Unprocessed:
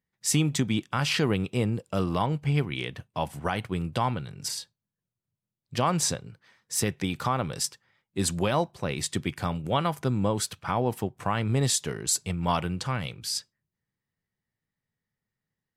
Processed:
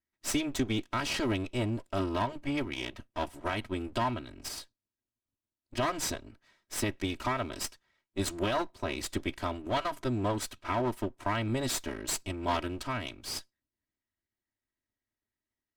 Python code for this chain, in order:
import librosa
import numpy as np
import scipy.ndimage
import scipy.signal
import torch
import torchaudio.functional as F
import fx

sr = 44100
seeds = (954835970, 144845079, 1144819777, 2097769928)

y = fx.lower_of_two(x, sr, delay_ms=3.1)
y = fx.high_shelf(y, sr, hz=11000.0, db=-6.5)
y = y * 10.0 ** (-4.0 / 20.0)